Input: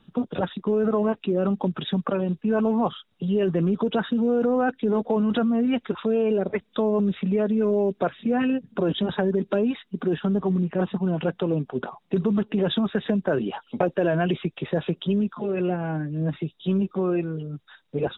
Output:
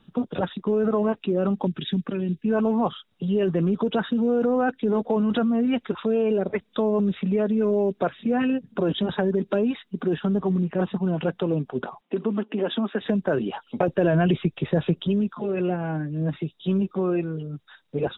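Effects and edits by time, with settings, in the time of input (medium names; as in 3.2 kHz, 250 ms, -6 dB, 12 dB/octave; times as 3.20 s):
1.67–2.46 s: high-order bell 820 Hz -13.5 dB
12.01–13.01 s: elliptic band-pass 230–3200 Hz
13.88–15.08 s: bass shelf 180 Hz +9 dB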